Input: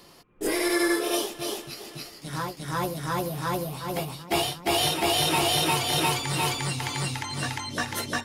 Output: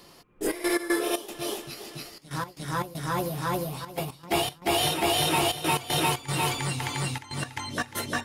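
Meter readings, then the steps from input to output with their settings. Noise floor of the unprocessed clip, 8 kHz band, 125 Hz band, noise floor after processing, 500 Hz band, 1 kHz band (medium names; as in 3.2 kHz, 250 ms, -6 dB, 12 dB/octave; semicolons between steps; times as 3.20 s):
-51 dBFS, -2.0 dB, -0.5 dB, -53 dBFS, -1.0 dB, -0.5 dB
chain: dynamic bell 5.1 kHz, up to -4 dB, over -42 dBFS, Q 1.5; trance gate "xxxx.x.xx.xxx" 117 bpm -12 dB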